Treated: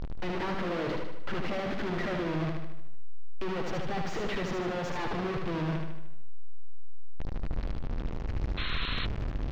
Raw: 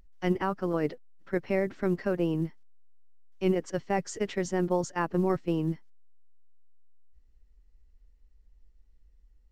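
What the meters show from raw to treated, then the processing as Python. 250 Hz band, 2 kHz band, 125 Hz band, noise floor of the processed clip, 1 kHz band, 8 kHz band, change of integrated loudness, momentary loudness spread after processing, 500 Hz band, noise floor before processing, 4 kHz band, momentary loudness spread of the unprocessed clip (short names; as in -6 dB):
-4.0 dB, +3.0 dB, 0.0 dB, -34 dBFS, -1.0 dB, -7.5 dB, -4.0 dB, 6 LU, -4.5 dB, -61 dBFS, +9.0 dB, 6 LU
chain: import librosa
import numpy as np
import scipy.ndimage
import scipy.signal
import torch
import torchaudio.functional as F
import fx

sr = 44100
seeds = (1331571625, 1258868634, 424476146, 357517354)

p1 = np.sign(x) * np.sqrt(np.mean(np.square(x)))
p2 = fx.air_absorb(p1, sr, metres=240.0)
p3 = p2 + fx.echo_feedback(p2, sr, ms=76, feedback_pct=54, wet_db=-4.0, dry=0)
y = fx.spec_paint(p3, sr, seeds[0], shape='noise', start_s=8.57, length_s=0.49, low_hz=970.0, high_hz=4300.0, level_db=-36.0)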